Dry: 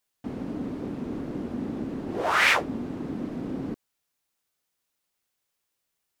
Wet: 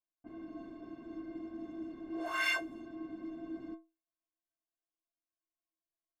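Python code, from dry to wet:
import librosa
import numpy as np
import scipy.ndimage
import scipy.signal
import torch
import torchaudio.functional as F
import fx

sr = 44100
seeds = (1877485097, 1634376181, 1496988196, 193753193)

y = fx.env_lowpass(x, sr, base_hz=930.0, full_db=-23.5)
y = fx.stiff_resonator(y, sr, f0_hz=320.0, decay_s=0.28, stiffness=0.03)
y = F.gain(torch.from_numpy(y), 3.0).numpy()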